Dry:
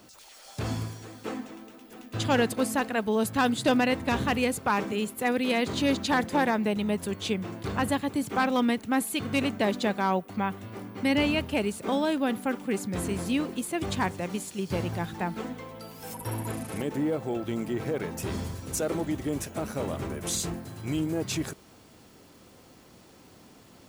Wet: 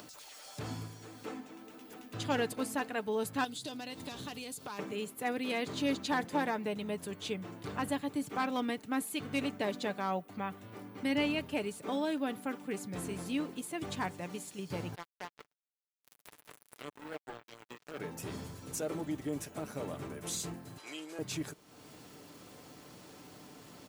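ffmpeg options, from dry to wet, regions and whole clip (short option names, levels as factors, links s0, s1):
-filter_complex "[0:a]asettb=1/sr,asplit=3[s0][s1][s2];[s0]atrim=end=3.444[s3];[s1]atrim=start=3.44:end=4.79,asetpts=PTS-STARTPTS,afade=t=in:d=0.004:c=qsin,afade=t=out:st=1.346:d=0.004:c=qsin,highshelf=f=2800:t=q:w=1.5:g=8.5,acompressor=threshold=0.0316:ratio=16:attack=3.2:release=140:knee=1:detection=peak[s4];[s2]atrim=start=4.786[s5];[s3][s4]acrossfade=d=0.004:c1=hsin:c2=qsin[s6];[s6][s5]acrossfade=d=0.004:c1=qsin:c2=hsin,asettb=1/sr,asplit=3[s7][s8][s9];[s7]atrim=end=14.954[s10];[s8]atrim=start=14.95:end=17.98,asetpts=PTS-STARTPTS,afade=t=in:d=0.004:c=qsin,afade=t=out:st=3.026:d=0.004:c=qsin,highpass=290,flanger=delay=1.3:depth=4.2:regen=62:speed=1.2:shape=sinusoidal,acrusher=bits=4:mix=0:aa=0.5[s11];[s9]atrim=start=17.976[s12];[s10][s11]acrossfade=d=0.004:c1=hsin:c2=qsin[s13];[s13][s12]acrossfade=d=0.004:c1=qsin:c2=hsin,asettb=1/sr,asplit=3[s14][s15][s16];[s14]atrim=end=20.784[s17];[s15]atrim=start=20.78:end=21.19,asetpts=PTS-STARTPTS,afade=t=in:d=0.004:c=qsin,afade=t=out:st=0.406:d=0.004:c=qsin,highpass=410,lowpass=4700,aemphasis=mode=production:type=riaa[s18];[s16]atrim=start=21.186[s19];[s17][s18]acrossfade=d=0.004:c1=hsin:c2=qsin[s20];[s20][s19]acrossfade=d=0.004:c1=qsin:c2=hsin,lowshelf=f=64:g=-10.5,aecho=1:1:6.8:0.35,acompressor=mode=upward:threshold=0.0178:ratio=2.5,volume=0.398"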